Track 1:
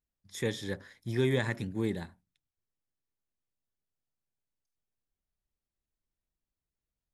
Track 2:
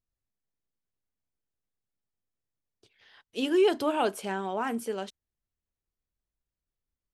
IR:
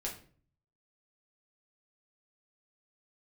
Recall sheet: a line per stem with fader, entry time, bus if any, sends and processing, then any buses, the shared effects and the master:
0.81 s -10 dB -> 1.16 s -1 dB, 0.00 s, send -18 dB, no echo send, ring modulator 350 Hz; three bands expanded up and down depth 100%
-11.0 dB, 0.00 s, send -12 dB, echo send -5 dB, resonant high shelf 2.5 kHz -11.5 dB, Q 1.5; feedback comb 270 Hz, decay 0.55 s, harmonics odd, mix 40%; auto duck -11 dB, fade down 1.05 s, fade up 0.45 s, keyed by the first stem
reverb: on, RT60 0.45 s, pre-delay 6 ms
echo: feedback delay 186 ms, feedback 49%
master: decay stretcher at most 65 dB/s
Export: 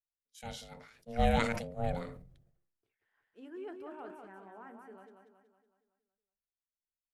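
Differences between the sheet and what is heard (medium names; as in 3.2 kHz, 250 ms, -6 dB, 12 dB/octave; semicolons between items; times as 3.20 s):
stem 2 -11.0 dB -> -18.5 dB; reverb return -7.0 dB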